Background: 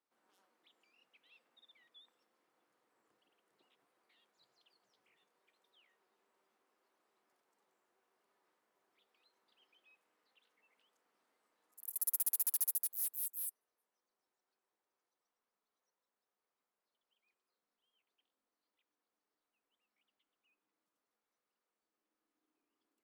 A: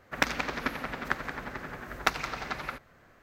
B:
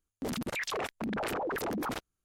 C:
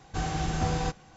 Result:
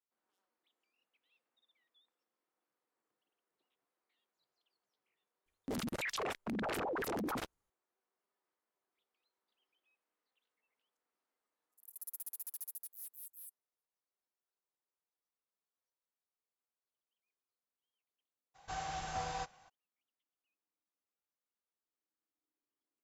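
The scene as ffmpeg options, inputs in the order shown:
-filter_complex "[0:a]volume=0.282[s0];[3:a]lowshelf=f=480:t=q:w=1.5:g=-11[s1];[2:a]atrim=end=2.24,asetpts=PTS-STARTPTS,volume=0.631,afade=t=in:d=0.004:c=hsin,afade=t=out:st=2.236:d=0.004:c=hsin,adelay=5460[s2];[s1]atrim=end=1.16,asetpts=PTS-STARTPTS,volume=0.376,afade=t=in:d=0.02,afade=t=out:st=1.14:d=0.02,adelay=18540[s3];[s0][s2][s3]amix=inputs=3:normalize=0"

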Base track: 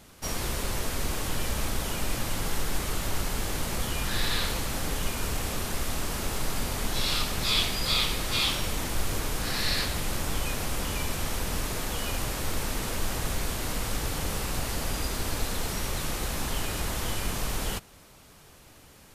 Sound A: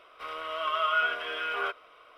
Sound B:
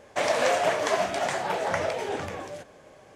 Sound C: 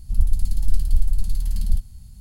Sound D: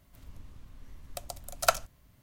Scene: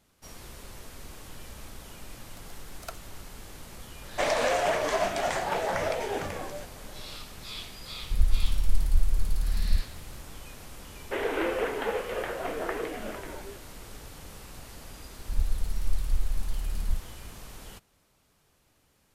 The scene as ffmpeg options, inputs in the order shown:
-filter_complex "[2:a]asplit=2[s0][s1];[3:a]asplit=2[s2][s3];[0:a]volume=0.188[s4];[s0]alimiter=level_in=5.01:limit=0.891:release=50:level=0:latency=1[s5];[s1]highpass=f=470:t=q:w=0.5412,highpass=f=470:t=q:w=1.307,lowpass=f=3500:t=q:w=0.5176,lowpass=f=3500:t=q:w=0.7071,lowpass=f=3500:t=q:w=1.932,afreqshift=-190[s6];[4:a]atrim=end=2.22,asetpts=PTS-STARTPTS,volume=0.141,afade=t=in:d=0.004:c=hsin,afade=t=out:st=2.216:d=0.004:c=hsin,adelay=1200[s7];[s5]atrim=end=3.15,asetpts=PTS-STARTPTS,volume=0.178,afade=t=in:d=0.004:c=hsin,afade=t=out:st=3.146:d=0.004:c=hsin,adelay=4020[s8];[s2]atrim=end=2.2,asetpts=PTS-STARTPTS,volume=0.596,afade=t=in:d=0.004:c=hsin,afade=t=out:st=2.196:d=0.004:c=hsin,adelay=8010[s9];[s6]atrim=end=3.15,asetpts=PTS-STARTPTS,volume=0.596,afade=t=in:d=0.004:c=hsin,afade=t=out:st=3.146:d=0.004:c=hsin,adelay=10950[s10];[s3]atrim=end=2.2,asetpts=PTS-STARTPTS,volume=0.376,afade=t=in:d=0.004:c=hsin,afade=t=out:st=2.196:d=0.004:c=hsin,adelay=15190[s11];[s4][s7][s8][s9][s10][s11]amix=inputs=6:normalize=0"

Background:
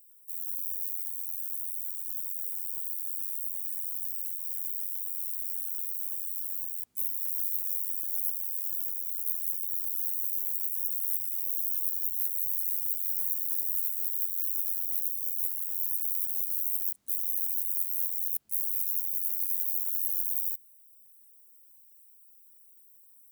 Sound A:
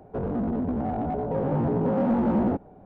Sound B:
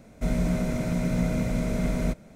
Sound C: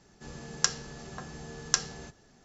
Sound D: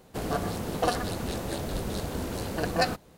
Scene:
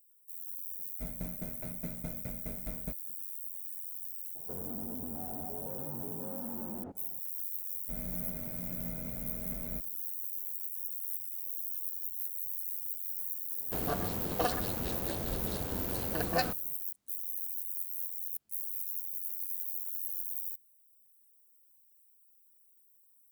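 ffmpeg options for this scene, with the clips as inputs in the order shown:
-filter_complex "[2:a]asplit=2[s0][s1];[0:a]volume=0.422[s2];[s0]aeval=exprs='val(0)*pow(10,-19*if(lt(mod(4.8*n/s,1),2*abs(4.8)/1000),1-mod(4.8*n/s,1)/(2*abs(4.8)/1000),(mod(4.8*n/s,1)-2*abs(4.8)/1000)/(1-2*abs(4.8)/1000))/20)':c=same[s3];[1:a]acompressor=threshold=0.0282:ratio=6:attack=3.2:release=140:knee=1:detection=peak[s4];[s3]atrim=end=2.35,asetpts=PTS-STARTPTS,volume=0.282,afade=t=in:d=0.004:c=hsin,afade=t=out:st=2.346:d=0.004:c=hsin,adelay=790[s5];[s4]atrim=end=2.85,asetpts=PTS-STARTPTS,volume=0.335,afade=t=in:d=0.004:c=hsin,afade=t=out:st=2.846:d=0.004:c=hsin,adelay=4350[s6];[s1]atrim=end=2.35,asetpts=PTS-STARTPTS,volume=0.141,afade=t=in:d=0.05,afade=t=out:st=2.3:d=0.05,adelay=7670[s7];[4:a]atrim=end=3.17,asetpts=PTS-STARTPTS,volume=0.562,afade=t=in:d=0.004:c=hsin,afade=t=out:st=3.166:d=0.004:c=hsin,adelay=13570[s8];[s2][s5][s6][s7][s8]amix=inputs=5:normalize=0"

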